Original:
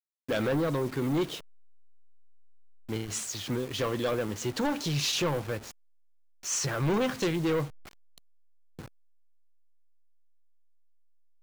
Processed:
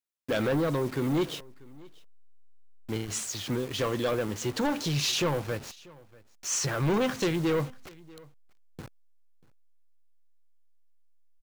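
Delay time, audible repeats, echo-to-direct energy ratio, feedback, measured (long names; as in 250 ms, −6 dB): 639 ms, 1, −23.5 dB, repeats not evenly spaced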